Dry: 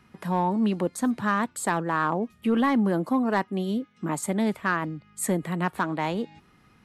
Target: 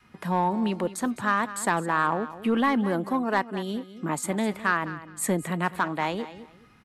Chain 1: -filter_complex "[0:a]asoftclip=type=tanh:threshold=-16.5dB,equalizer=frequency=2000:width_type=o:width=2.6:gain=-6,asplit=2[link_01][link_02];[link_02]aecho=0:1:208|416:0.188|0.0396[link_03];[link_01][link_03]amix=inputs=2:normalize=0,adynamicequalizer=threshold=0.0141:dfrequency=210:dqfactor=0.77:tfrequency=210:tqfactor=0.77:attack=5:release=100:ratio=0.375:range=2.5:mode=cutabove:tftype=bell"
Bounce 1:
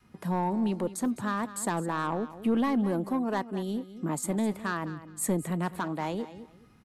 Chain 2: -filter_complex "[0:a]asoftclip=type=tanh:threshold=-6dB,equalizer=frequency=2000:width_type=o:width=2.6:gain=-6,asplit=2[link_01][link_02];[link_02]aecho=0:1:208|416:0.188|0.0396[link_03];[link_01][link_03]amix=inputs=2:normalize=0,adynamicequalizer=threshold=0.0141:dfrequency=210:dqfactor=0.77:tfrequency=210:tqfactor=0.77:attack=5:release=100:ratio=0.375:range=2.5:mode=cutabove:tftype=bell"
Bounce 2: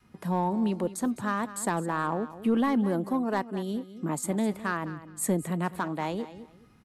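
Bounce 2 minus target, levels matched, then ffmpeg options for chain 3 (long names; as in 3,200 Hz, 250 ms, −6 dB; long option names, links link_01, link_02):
2,000 Hz band −5.5 dB
-filter_complex "[0:a]asoftclip=type=tanh:threshold=-6dB,equalizer=frequency=2000:width_type=o:width=2.6:gain=2.5,asplit=2[link_01][link_02];[link_02]aecho=0:1:208|416:0.188|0.0396[link_03];[link_01][link_03]amix=inputs=2:normalize=0,adynamicequalizer=threshold=0.0141:dfrequency=210:dqfactor=0.77:tfrequency=210:tqfactor=0.77:attack=5:release=100:ratio=0.375:range=2.5:mode=cutabove:tftype=bell"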